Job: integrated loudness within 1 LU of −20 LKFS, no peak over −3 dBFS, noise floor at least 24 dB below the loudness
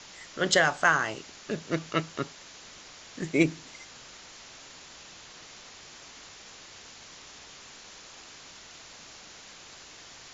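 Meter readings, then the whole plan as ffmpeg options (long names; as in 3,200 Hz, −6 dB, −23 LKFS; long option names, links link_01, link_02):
background noise floor −49 dBFS; target noise floor −52 dBFS; integrated loudness −27.5 LKFS; sample peak −8.5 dBFS; target loudness −20.0 LKFS
→ -af "afftdn=noise_reduction=6:noise_floor=-49"
-af "volume=7.5dB,alimiter=limit=-3dB:level=0:latency=1"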